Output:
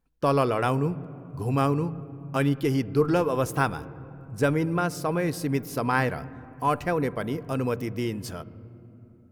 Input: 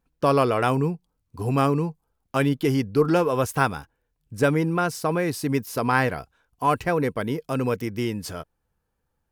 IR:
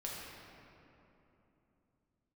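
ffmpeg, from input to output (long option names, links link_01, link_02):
-filter_complex "[0:a]asplit=2[link_01][link_02];[link_02]aemphasis=mode=reproduction:type=bsi[link_03];[1:a]atrim=start_sample=2205,lowpass=4000[link_04];[link_03][link_04]afir=irnorm=-1:irlink=0,volume=-16.5dB[link_05];[link_01][link_05]amix=inputs=2:normalize=0,volume=-3.5dB"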